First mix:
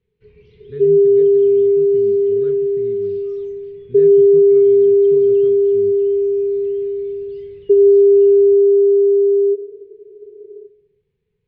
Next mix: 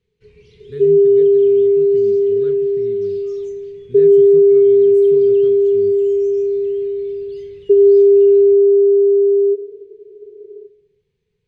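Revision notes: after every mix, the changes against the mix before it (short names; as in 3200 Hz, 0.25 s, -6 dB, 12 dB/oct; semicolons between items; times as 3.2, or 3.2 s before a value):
master: remove air absorption 270 m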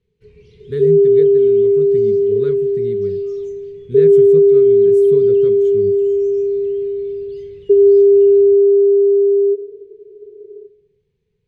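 speech +8.0 dB; first sound: add tilt shelf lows +3 dB, about 650 Hz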